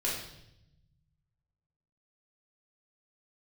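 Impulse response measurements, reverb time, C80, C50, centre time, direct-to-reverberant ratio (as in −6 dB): 0.80 s, 6.0 dB, 2.5 dB, 51 ms, −7.0 dB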